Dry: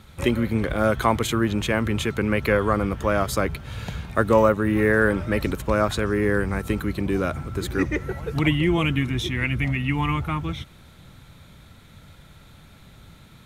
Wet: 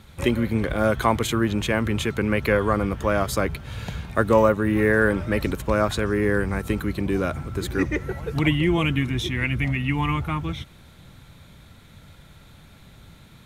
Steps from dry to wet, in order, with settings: band-stop 1.3 kHz, Q 27

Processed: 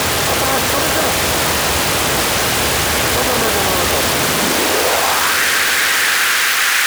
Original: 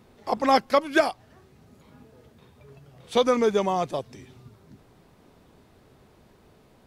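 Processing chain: spectral levelling over time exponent 0.2; resonant high shelf 2.9 kHz -13.5 dB, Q 1.5; in parallel at +0.5 dB: peak limiter -7.5 dBFS, peak gain reduction 9.5 dB; on the sum: transient shaper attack -3 dB, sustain +2 dB; waveshaping leveller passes 5; wavefolder -10.5 dBFS; high-pass sweep 71 Hz -> 1.6 kHz, 3.96–5.42 s; on a send: echo with a slow build-up 129 ms, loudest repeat 5, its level -18 dB

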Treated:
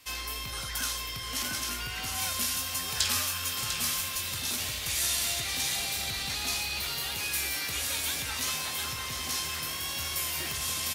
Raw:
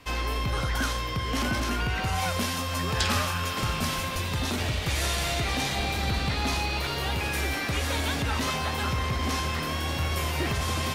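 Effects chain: pre-emphasis filter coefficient 0.9; doubling 20 ms -11.5 dB; delay 698 ms -8 dB; trim +5 dB

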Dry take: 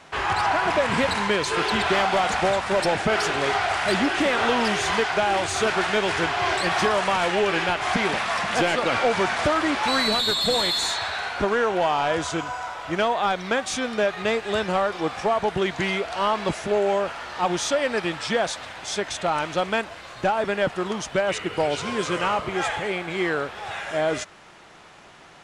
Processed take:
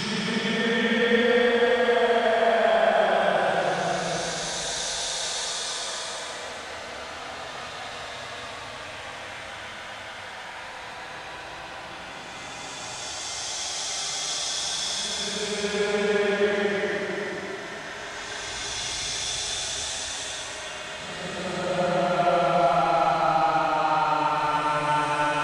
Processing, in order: Paulstretch 23×, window 0.10 s, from 18.29 s; thinning echo 1116 ms, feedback 79%, high-pass 180 Hz, level -20.5 dB

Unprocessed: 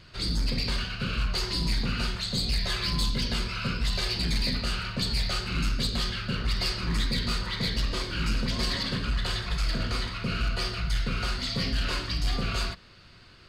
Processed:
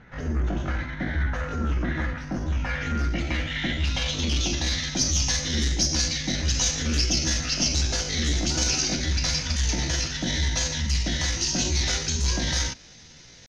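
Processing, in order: low-pass sweep 1.1 kHz -> 3.9 kHz, 2.48–4.99 s; pitch shift +5.5 st; trim +2 dB

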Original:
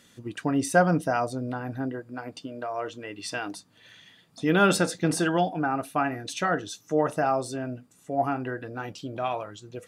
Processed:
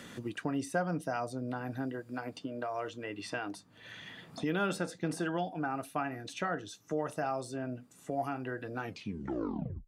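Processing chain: tape stop on the ending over 1.05 s; three bands compressed up and down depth 70%; trim -9 dB

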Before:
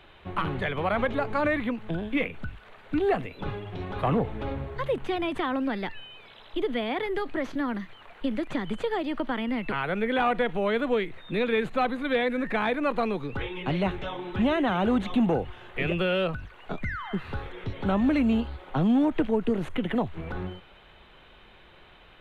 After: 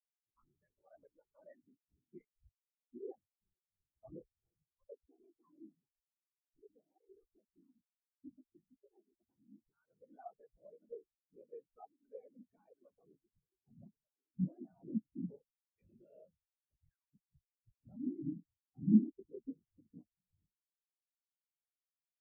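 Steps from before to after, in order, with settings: whisper effect; spectral contrast expander 4:1; trim -6 dB

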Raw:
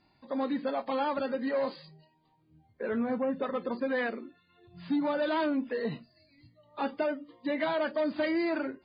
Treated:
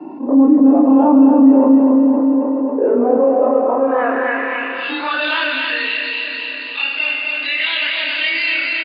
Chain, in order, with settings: short-time spectra conjugated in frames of 67 ms; high-pass 190 Hz; feedback delay 269 ms, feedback 50%, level -5 dB; simulated room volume 220 m³, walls hard, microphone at 0.37 m; high-pass sweep 290 Hz -> 2.2 kHz, 2.24–6.11 s; small resonant body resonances 260/2700 Hz, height 17 dB, ringing for 20 ms; low-pass sweep 950 Hz -> 4 kHz, 3.75–5.05 s; level flattener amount 50%; trim -1.5 dB

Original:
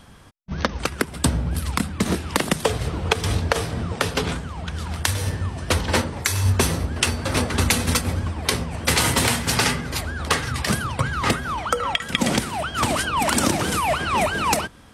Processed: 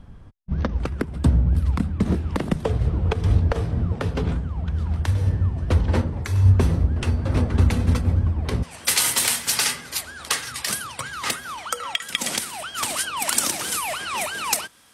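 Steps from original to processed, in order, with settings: tilt EQ -3.5 dB/octave, from 8.62 s +3.5 dB/octave; trim -7 dB

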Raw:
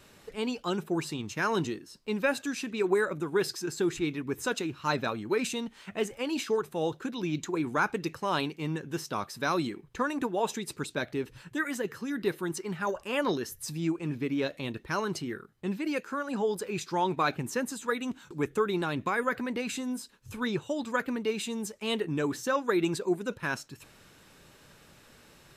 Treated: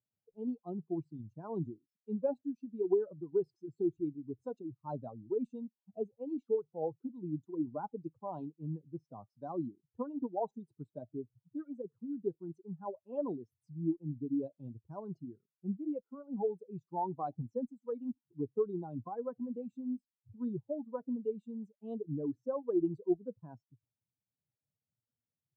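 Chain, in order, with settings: expander on every frequency bin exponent 2; elliptic band-pass 110–810 Hz, stop band 40 dB; Chebyshev shaper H 2 -40 dB, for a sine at -19 dBFS

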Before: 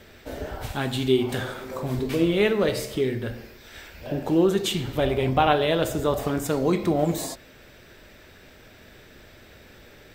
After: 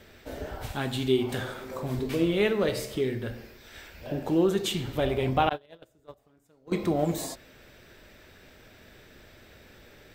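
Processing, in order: 5.49–6.72 s: gate -17 dBFS, range -34 dB; trim -3.5 dB

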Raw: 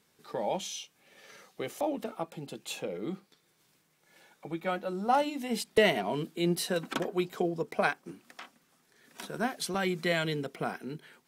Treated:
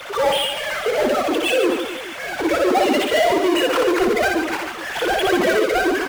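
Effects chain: formants replaced by sine waves; in parallel at +1 dB: compressor with a negative ratio -38 dBFS, ratio -1; on the sum: power-law waveshaper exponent 0.35; time stretch by phase-locked vocoder 0.54×; reverse bouncing-ball echo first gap 60 ms, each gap 1.4×, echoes 5

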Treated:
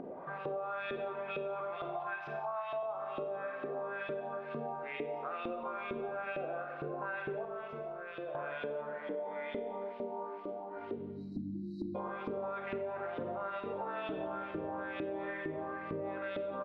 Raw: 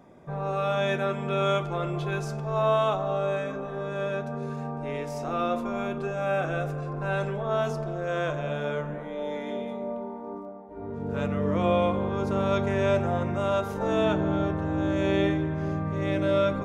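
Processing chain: CVSD coder 64 kbps; LFO band-pass saw up 2.2 Hz 340–3300 Hz; on a send: delay 177 ms -17.5 dB; 10.95–11.95 s: on the sum: spectral selection erased 350–3800 Hz; distance through air 400 m; peak limiter -30 dBFS, peak gain reduction 9.5 dB; 1.76–2.83 s: resonant low shelf 570 Hz -7.5 dB, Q 3; 7.45–8.35 s: feedback comb 200 Hz, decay 1.4 s, mix 80%; upward compressor, threshold -46 dBFS; Schroeder reverb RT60 0.95 s, combs from 31 ms, DRR 5 dB; compression, threshold -44 dBFS, peak gain reduction 13.5 dB; trim +8 dB

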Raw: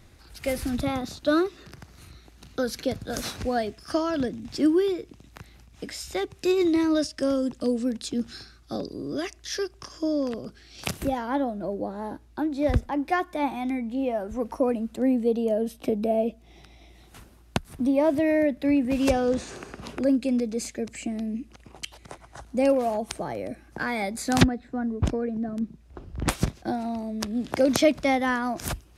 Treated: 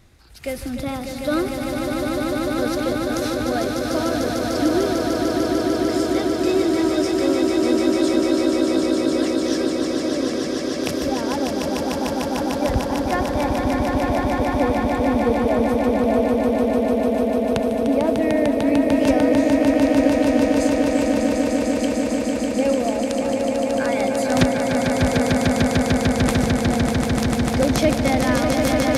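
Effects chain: echo with a slow build-up 149 ms, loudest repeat 8, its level -4.5 dB

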